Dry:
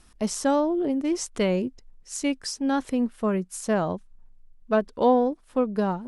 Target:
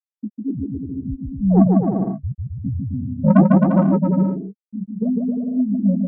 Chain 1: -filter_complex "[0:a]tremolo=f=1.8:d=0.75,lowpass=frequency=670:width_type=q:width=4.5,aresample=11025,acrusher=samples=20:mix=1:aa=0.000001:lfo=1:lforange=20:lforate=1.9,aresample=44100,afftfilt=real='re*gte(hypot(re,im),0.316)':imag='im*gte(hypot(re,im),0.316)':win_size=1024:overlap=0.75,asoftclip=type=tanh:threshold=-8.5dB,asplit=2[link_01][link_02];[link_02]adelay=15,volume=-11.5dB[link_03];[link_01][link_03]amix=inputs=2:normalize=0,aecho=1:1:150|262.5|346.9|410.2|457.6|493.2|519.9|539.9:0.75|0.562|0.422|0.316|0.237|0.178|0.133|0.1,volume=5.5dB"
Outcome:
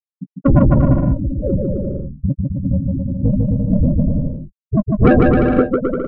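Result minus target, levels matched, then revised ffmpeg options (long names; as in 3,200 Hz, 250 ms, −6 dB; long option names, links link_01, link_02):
500 Hz band +4.5 dB
-filter_complex "[0:a]tremolo=f=1.8:d=0.75,lowpass=frequency=190:width_type=q:width=4.5,aresample=11025,acrusher=samples=20:mix=1:aa=0.000001:lfo=1:lforange=20:lforate=1.9,aresample=44100,afftfilt=real='re*gte(hypot(re,im),0.316)':imag='im*gte(hypot(re,im),0.316)':win_size=1024:overlap=0.75,asoftclip=type=tanh:threshold=-8.5dB,asplit=2[link_01][link_02];[link_02]adelay=15,volume=-11.5dB[link_03];[link_01][link_03]amix=inputs=2:normalize=0,aecho=1:1:150|262.5|346.9|410.2|457.6|493.2|519.9|539.9:0.75|0.562|0.422|0.316|0.237|0.178|0.133|0.1,volume=5.5dB"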